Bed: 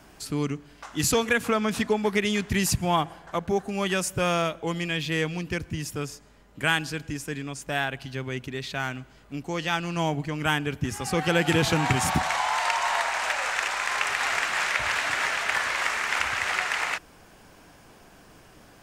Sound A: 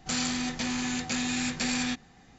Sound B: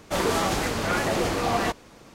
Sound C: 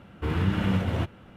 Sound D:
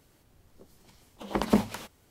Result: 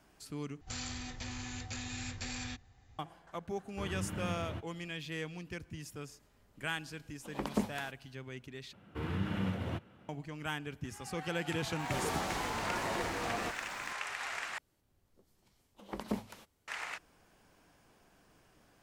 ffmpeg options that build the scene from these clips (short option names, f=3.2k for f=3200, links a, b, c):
-filter_complex "[3:a]asplit=2[a][b];[4:a]asplit=2[c][d];[0:a]volume=-13.5dB[e];[1:a]lowshelf=f=130:t=q:w=3:g=10[f];[b]highpass=89[g];[2:a]aeval=exprs='val(0)+0.5*0.0168*sgn(val(0))':c=same[h];[e]asplit=4[i][j][k][l];[i]atrim=end=0.614[m];[f]atrim=end=2.38,asetpts=PTS-STARTPTS,volume=-11.5dB[n];[j]atrim=start=2.986:end=8.734[o];[g]atrim=end=1.36,asetpts=PTS-STARTPTS,volume=-9dB[p];[k]atrim=start=10.086:end=14.584[q];[d]atrim=end=2.1,asetpts=PTS-STARTPTS,volume=-13dB[r];[l]atrim=start=16.676[s];[a]atrim=end=1.36,asetpts=PTS-STARTPTS,volume=-14.5dB,afade=t=in:d=0.004:c=hsin,afade=t=out:st=1.356:d=0.004:c=hsin,adelay=3550[t];[c]atrim=end=2.1,asetpts=PTS-STARTPTS,volume=-9.5dB,afade=t=in:d=0.004:c=hsin,afade=t=out:st=2.096:d=0.004:c=hsin,adelay=6040[u];[h]atrim=end=2.14,asetpts=PTS-STARTPTS,volume=-14dB,afade=t=in:d=0.004:c=hsin,afade=t=out:st=2.136:d=0.004:c=hsin,adelay=11790[v];[m][n]acrossfade=d=0.004:c1=hsin:c2=hsin[w];[w][o]acrossfade=d=0.004:c1=hsin:c2=hsin[x];[x][p]acrossfade=d=0.004:c1=hsin:c2=hsin[y];[y][q]acrossfade=d=0.004:c1=hsin:c2=hsin[z];[z][r]acrossfade=d=0.004:c1=hsin:c2=hsin[aa];[aa][s]acrossfade=d=0.004:c1=hsin:c2=hsin[ab];[ab][t][u][v]amix=inputs=4:normalize=0"